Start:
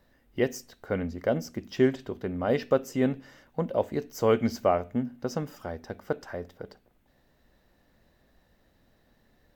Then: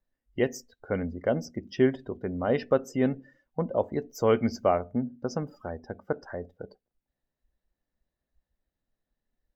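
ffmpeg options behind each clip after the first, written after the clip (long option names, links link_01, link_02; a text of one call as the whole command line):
ffmpeg -i in.wav -af "afftdn=noise_reduction=23:noise_floor=-45" out.wav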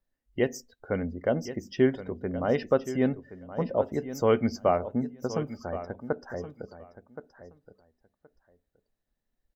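ffmpeg -i in.wav -af "aecho=1:1:1072|2144:0.224|0.0358" out.wav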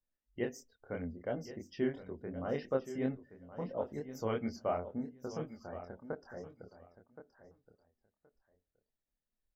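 ffmpeg -i in.wav -af "flanger=delay=22.5:depth=5.8:speed=2.9,volume=-7.5dB" out.wav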